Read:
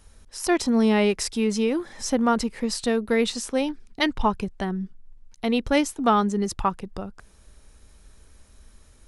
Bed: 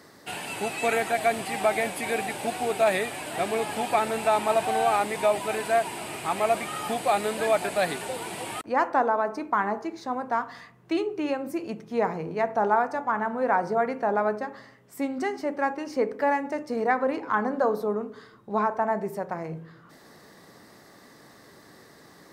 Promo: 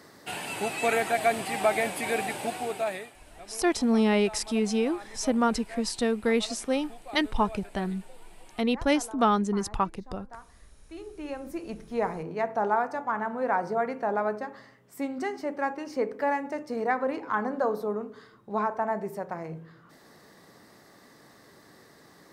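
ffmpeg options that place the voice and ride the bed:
-filter_complex "[0:a]adelay=3150,volume=-3dB[a];[1:a]volume=16.5dB,afade=t=out:st=2.31:d=0.84:silence=0.105925,afade=t=in:st=10.89:d=0.89:silence=0.141254[b];[a][b]amix=inputs=2:normalize=0"

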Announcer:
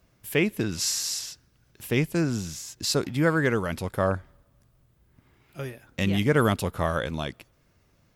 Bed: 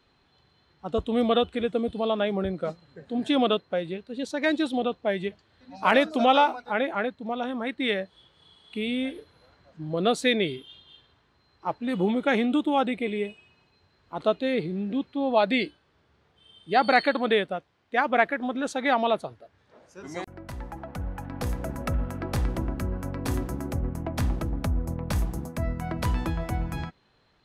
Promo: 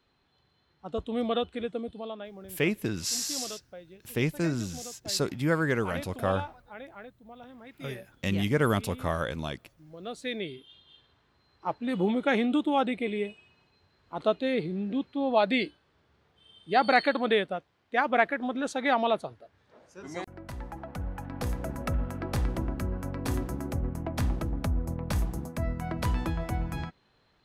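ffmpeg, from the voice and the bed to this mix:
-filter_complex "[0:a]adelay=2250,volume=-3.5dB[a];[1:a]volume=10dB,afade=t=out:st=1.62:d=0.68:silence=0.251189,afade=t=in:st=10:d=1.3:silence=0.158489[b];[a][b]amix=inputs=2:normalize=0"

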